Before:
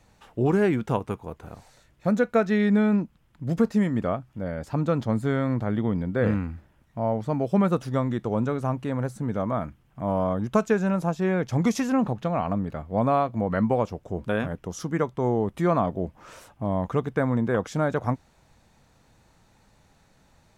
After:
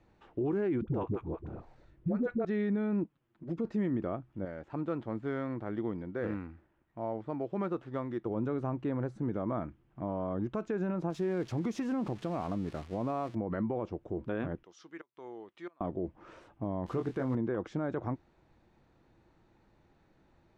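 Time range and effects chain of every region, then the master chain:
0:00.81–0:02.45: spectral tilt −2 dB per octave + all-pass dispersion highs, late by 69 ms, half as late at 460 Hz
0:03.04–0:03.65: high-pass filter 53 Hz 6 dB per octave + low-shelf EQ 120 Hz −9 dB + flanger swept by the level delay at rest 9.3 ms, full sweep at −23.5 dBFS
0:04.45–0:08.26: running median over 9 samples + low-shelf EQ 450 Hz −9 dB
0:11.10–0:13.35: spike at every zero crossing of −23.5 dBFS + downward compressor 2.5 to 1, threshold −25 dBFS
0:14.63–0:15.81: resonant band-pass 4,000 Hz, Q 0.94 + gate with flip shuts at −27 dBFS, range −25 dB
0:16.86–0:17.35: spike at every zero crossing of −27.5 dBFS + double-tracking delay 23 ms −7 dB
whole clip: Bessel low-pass filter 2,600 Hz, order 2; parametric band 340 Hz +11.5 dB 0.43 octaves; brickwall limiter −17.5 dBFS; level −7 dB

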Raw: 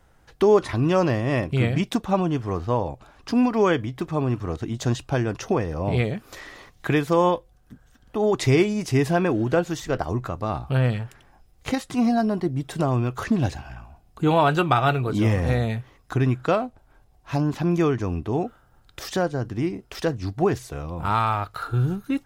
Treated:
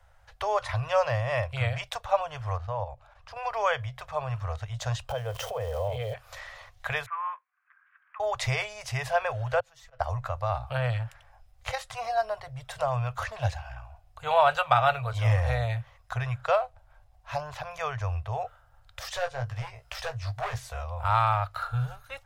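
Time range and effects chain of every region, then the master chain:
0:02.56–0:03.46: high-shelf EQ 3,800 Hz −5.5 dB + output level in coarse steps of 9 dB
0:05.08–0:06.14: spike at every zero crossing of −29 dBFS + downward compressor 10 to 1, threshold −29 dBFS + hollow resonant body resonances 250/450/3,100 Hz, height 17 dB, ringing for 30 ms
0:07.06–0:08.20: Chebyshev band-pass filter 1,100–2,400 Hz, order 3 + high-frequency loss of the air 210 metres + one half of a high-frequency compander encoder only
0:09.60–0:10.00: volume swells 489 ms + downward compressor 3 to 1, threshold −49 dBFS + comb filter 6.1 ms, depth 66%
0:19.10–0:20.84: hard clipping −21.5 dBFS + double-tracking delay 17 ms −6 dB + one half of a high-frequency compander encoder only
whole clip: elliptic band-stop filter 110–570 Hz, stop band 40 dB; high-shelf EQ 4,400 Hz −7 dB

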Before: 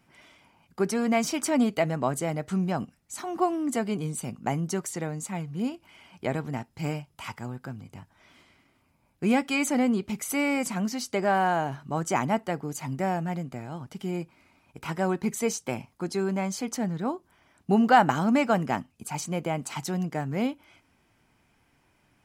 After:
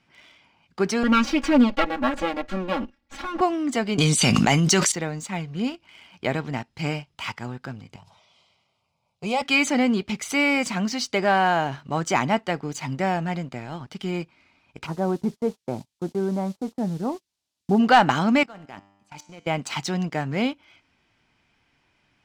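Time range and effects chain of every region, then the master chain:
0:01.03–0:03.41: lower of the sound and its delayed copy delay 3.6 ms + low-pass filter 1,700 Hz 6 dB per octave + comb filter 3.6 ms, depth 97%
0:03.98–0:04.92: high-shelf EQ 2,100 Hz +12 dB + envelope flattener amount 100%
0:07.96–0:09.42: high-pass filter 110 Hz + phaser with its sweep stopped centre 710 Hz, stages 4 + level that may fall only so fast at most 59 dB per second
0:14.85–0:17.78: Bessel low-pass filter 790 Hz, order 4 + background noise violet −48 dBFS + noise gate −42 dBFS, range −24 dB
0:18.43–0:19.47: output level in coarse steps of 17 dB + tuned comb filter 99 Hz, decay 1.1 s, mix 70%
whole clip: Chebyshev low-pass filter 3,800 Hz, order 2; high-shelf EQ 2,400 Hz +10.5 dB; leveller curve on the samples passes 1

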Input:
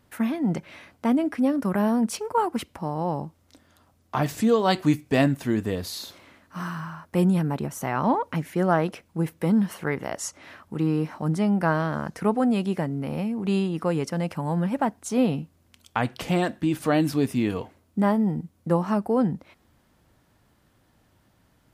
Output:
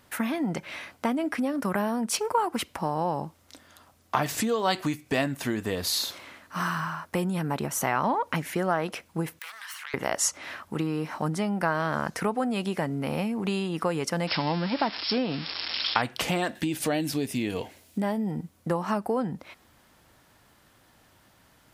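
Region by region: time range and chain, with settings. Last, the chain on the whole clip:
0:09.39–0:09.94: phase distortion by the signal itself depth 0.19 ms + high-pass filter 1,200 Hz 24 dB per octave + downward compressor 8 to 1, threshold −43 dBFS
0:14.27–0:16.02: spike at every zero crossing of −17.5 dBFS + linear-phase brick-wall low-pass 5,500 Hz + parametric band 310 Hz +5.5 dB 0.33 octaves
0:16.55–0:18.31: parametric band 1,200 Hz −10.5 dB 0.8 octaves + one half of a high-frequency compander encoder only
whole clip: downward compressor, threshold −26 dBFS; low-shelf EQ 480 Hz −9.5 dB; level +8 dB

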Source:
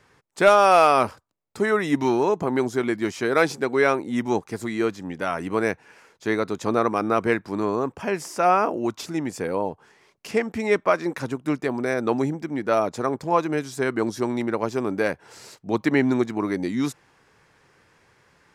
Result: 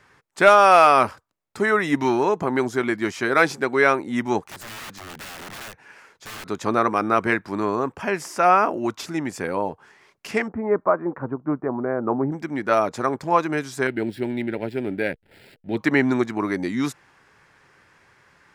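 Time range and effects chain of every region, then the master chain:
0:04.47–0:06.46: downward compressor 2.5 to 1, threshold −32 dBFS + wrap-around overflow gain 34 dB
0:10.48–0:12.32: low-pass filter 1,200 Hz 24 dB per octave + de-essing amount 95%
0:13.87–0:15.77: slack as between gear wheels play −39 dBFS + phaser with its sweep stopped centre 2,700 Hz, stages 4
whole clip: parametric band 1,600 Hz +5 dB 1.6 octaves; notch filter 470 Hz, Q 15

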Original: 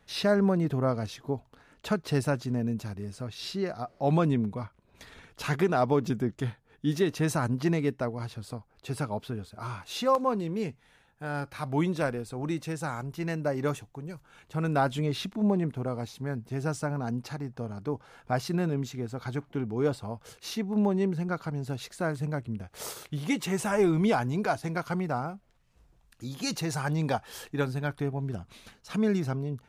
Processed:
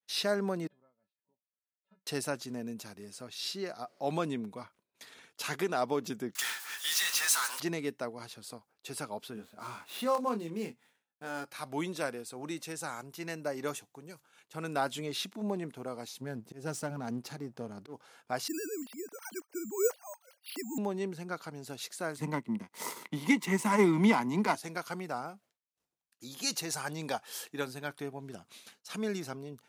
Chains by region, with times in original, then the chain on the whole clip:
0:00.67–0:02.07: downward compressor 5 to 1, threshold −42 dBFS + high-frequency loss of the air 460 metres + tuned comb filter 190 Hz, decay 0.22 s, harmonics odd, mix 90%
0:06.35–0:07.60: inverse Chebyshev high-pass filter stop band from 180 Hz, stop band 80 dB + power curve on the samples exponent 0.35
0:09.34–0:11.45: running median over 9 samples + parametric band 230 Hz +7 dB 0.26 octaves + double-tracking delay 24 ms −7 dB
0:16.21–0:17.94: gain on one half-wave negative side −7 dB + low-shelf EQ 400 Hz +11 dB + volume swells 170 ms
0:18.48–0:20.78: three sine waves on the formant tracks + bad sample-rate conversion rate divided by 6×, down filtered, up hold
0:22.18–0:24.55: power curve on the samples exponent 1.4 + hollow resonant body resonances 210/960/2,000 Hz, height 16 dB, ringing for 20 ms + multiband upward and downward compressor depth 40%
whole clip: downward expander −50 dBFS; high-pass filter 240 Hz 12 dB per octave; high-shelf EQ 3,200 Hz +11 dB; level −6 dB

